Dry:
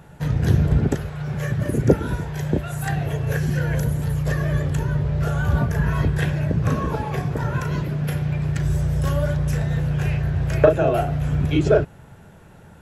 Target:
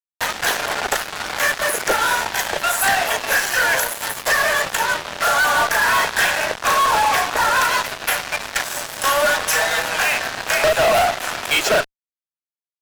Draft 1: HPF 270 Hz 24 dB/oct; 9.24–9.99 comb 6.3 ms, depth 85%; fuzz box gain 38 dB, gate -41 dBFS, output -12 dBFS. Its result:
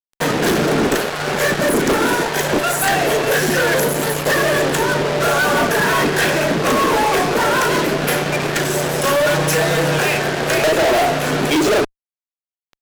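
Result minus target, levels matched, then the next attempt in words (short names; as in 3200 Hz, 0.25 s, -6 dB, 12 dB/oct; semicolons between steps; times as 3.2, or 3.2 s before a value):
250 Hz band +15.0 dB
HPF 740 Hz 24 dB/oct; 9.24–9.99 comb 6.3 ms, depth 85%; fuzz box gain 38 dB, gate -41 dBFS, output -12 dBFS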